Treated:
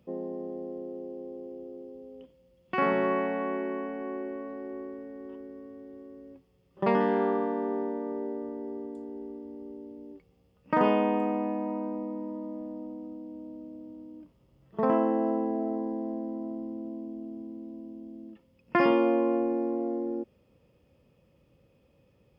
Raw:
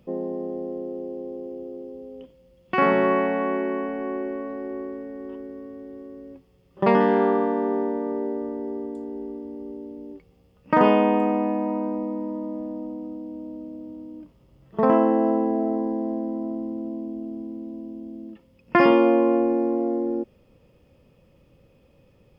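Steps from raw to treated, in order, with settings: HPF 49 Hz; gain -6.5 dB

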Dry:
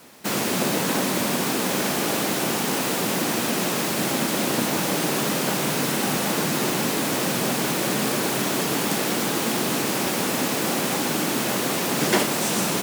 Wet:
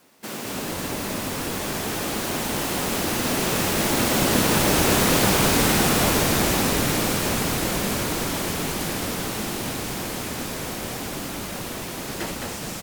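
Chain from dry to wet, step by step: Doppler pass-by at 5.15, 20 m/s, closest 28 m; frequency-shifting echo 0.212 s, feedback 46%, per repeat -100 Hz, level -3 dB; gain +3 dB

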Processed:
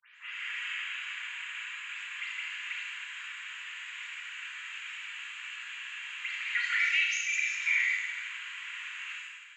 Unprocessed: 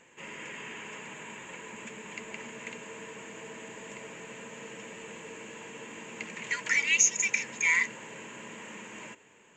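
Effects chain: spectral delay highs late, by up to 0.164 s; elliptic high-pass 1300 Hz, stop band 60 dB; compressor 6:1, threshold -32 dBFS, peak gain reduction 13 dB; resonant high shelf 4700 Hz -9 dB, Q 1.5; Schroeder reverb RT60 1.5 s, combs from 26 ms, DRR -1.5 dB; gain +3 dB

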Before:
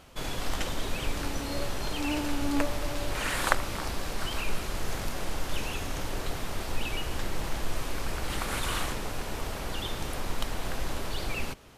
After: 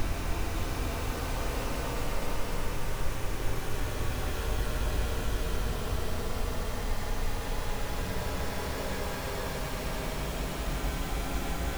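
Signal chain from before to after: half-waves squared off; Paulstretch 41×, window 0.10 s, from 9.35; gain -2.5 dB

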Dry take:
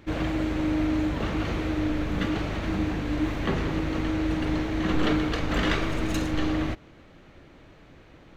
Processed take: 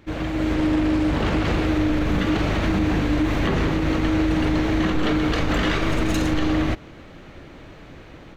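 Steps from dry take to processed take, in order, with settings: AGC gain up to 9 dB; limiter -12.5 dBFS, peak gain reduction 8.5 dB; 0.54–1.66 Doppler distortion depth 0.34 ms

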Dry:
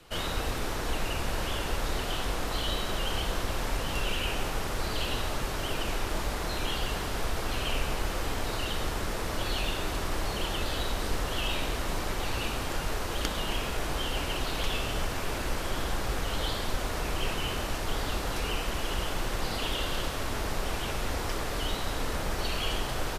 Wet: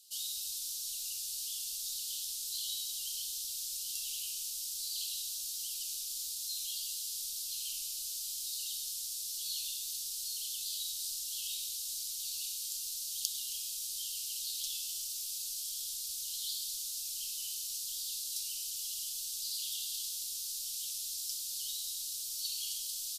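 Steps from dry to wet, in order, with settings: inverse Chebyshev high-pass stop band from 2100 Hz, stop band 40 dB; high shelf 5600 Hz +8 dB

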